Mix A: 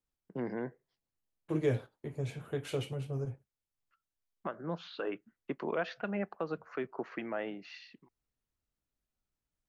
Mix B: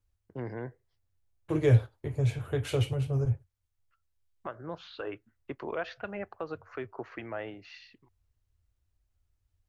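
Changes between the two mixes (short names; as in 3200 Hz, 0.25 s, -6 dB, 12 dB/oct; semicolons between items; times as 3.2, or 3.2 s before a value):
second voice +5.5 dB; master: add resonant low shelf 130 Hz +10.5 dB, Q 3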